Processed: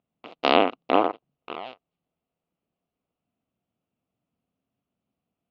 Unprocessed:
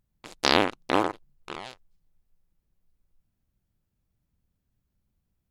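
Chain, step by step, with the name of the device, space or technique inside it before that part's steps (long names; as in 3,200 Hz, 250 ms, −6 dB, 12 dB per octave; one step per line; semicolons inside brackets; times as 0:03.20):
kitchen radio (loudspeaker in its box 180–3,400 Hz, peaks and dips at 260 Hz +6 dB, 470 Hz +5 dB, 690 Hz +10 dB, 1,200 Hz +5 dB, 1,700 Hz −7 dB, 2,800 Hz +6 dB)
level −1 dB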